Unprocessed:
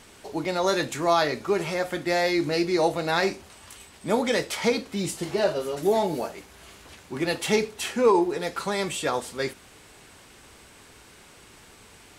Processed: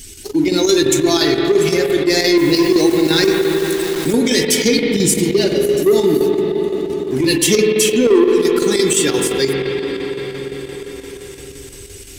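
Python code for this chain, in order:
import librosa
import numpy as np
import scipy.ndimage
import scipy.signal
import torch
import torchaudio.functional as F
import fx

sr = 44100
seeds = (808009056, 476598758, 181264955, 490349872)

y = fx.bin_expand(x, sr, power=1.5)
y = fx.curve_eq(y, sr, hz=(200.0, 390.0, 600.0, 5800.0), db=(0, 9, -15, 9))
y = fx.leveller(y, sr, passes=2)
y = fx.peak_eq(y, sr, hz=1200.0, db=-7.5, octaves=0.27)
y = fx.rev_spring(y, sr, rt60_s=3.5, pass_ms=(44, 51), chirp_ms=80, drr_db=2.0)
y = fx.chopper(y, sr, hz=5.8, depth_pct=60, duty_pct=80)
y = fx.quant_dither(y, sr, seeds[0], bits=6, dither='none', at=(2.37, 4.13))
y = fx.env_flatten(y, sr, amount_pct=50)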